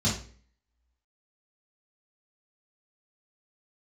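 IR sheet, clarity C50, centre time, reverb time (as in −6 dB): 5.5 dB, 33 ms, 0.45 s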